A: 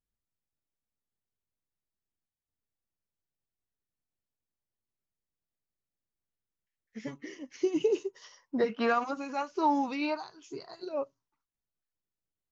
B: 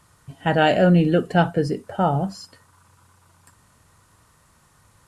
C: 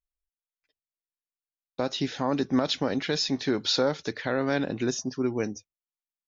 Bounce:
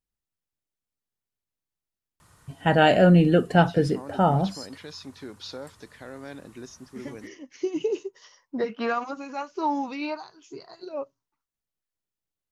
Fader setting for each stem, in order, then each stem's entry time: +0.5, -0.5, -14.0 dB; 0.00, 2.20, 1.75 s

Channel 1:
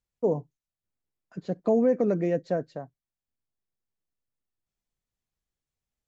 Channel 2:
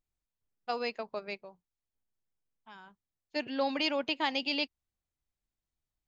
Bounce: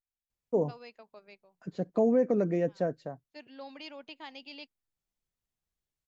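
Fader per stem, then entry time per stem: -2.5, -14.5 dB; 0.30, 0.00 s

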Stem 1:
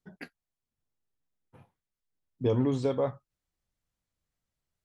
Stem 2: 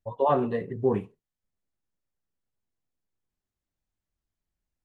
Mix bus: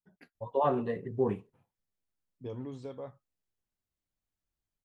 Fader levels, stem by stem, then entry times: -14.0, -4.5 dB; 0.00, 0.35 s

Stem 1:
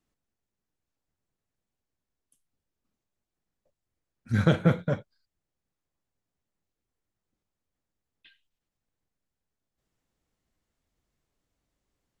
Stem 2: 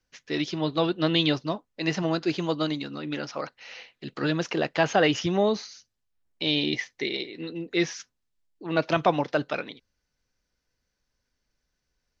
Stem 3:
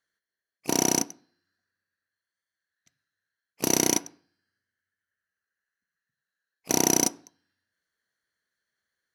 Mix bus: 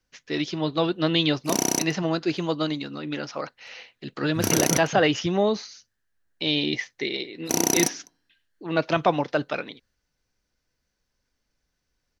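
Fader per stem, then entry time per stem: -6.5, +1.0, -0.5 dB; 0.05, 0.00, 0.80 s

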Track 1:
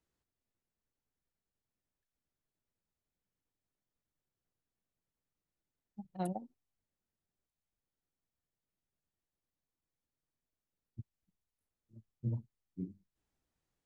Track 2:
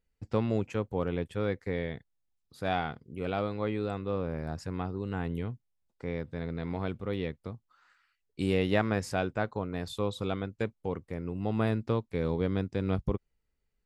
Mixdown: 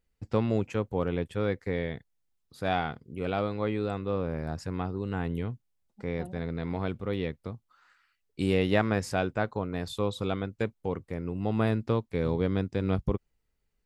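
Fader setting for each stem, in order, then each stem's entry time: -6.5, +2.0 dB; 0.00, 0.00 s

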